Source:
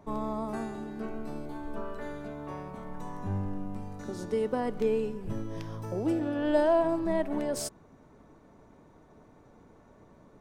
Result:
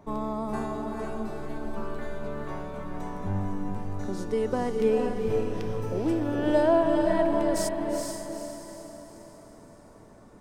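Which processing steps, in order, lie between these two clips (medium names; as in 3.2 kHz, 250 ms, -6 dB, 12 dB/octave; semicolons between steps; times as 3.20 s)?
echo that smears into a reverb 452 ms, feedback 46%, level -3 dB; trim +2 dB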